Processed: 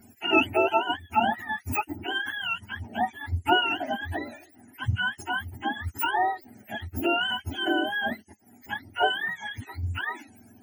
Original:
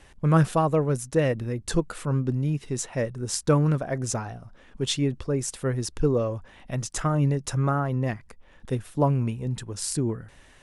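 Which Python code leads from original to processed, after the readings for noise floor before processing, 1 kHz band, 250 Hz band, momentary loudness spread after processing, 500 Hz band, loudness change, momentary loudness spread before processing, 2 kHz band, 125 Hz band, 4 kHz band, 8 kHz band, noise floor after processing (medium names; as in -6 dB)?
-54 dBFS, +5.5 dB, -6.0 dB, 12 LU, -4.5 dB, -1.5 dB, 10 LU, +12.0 dB, -12.0 dB, +7.0 dB, -16.0 dB, -56 dBFS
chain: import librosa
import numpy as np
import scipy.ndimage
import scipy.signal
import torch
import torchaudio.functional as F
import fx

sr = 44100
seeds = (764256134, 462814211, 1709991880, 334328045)

y = fx.octave_mirror(x, sr, pivot_hz=650.0)
y = fx.fixed_phaser(y, sr, hz=750.0, stages=8)
y = y * librosa.db_to_amplitude(4.5)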